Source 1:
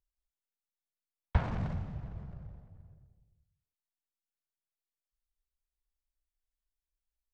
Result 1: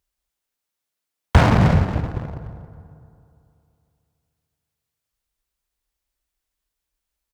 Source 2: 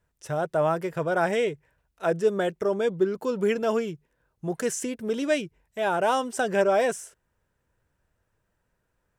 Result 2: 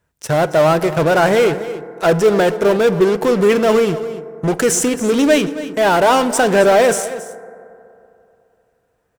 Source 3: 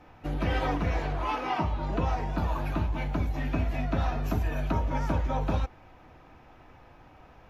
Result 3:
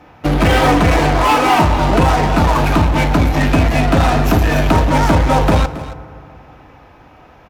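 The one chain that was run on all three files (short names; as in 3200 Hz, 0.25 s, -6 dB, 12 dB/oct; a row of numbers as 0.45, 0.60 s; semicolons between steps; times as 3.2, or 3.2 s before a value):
HPF 75 Hz 6 dB/oct; in parallel at -11 dB: fuzz box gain 36 dB, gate -42 dBFS; on the sum: echo 0.274 s -15 dB; FDN reverb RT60 2.8 s, high-frequency decay 0.3×, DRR 14 dB; normalise peaks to -2 dBFS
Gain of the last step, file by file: +12.0, +6.5, +10.5 dB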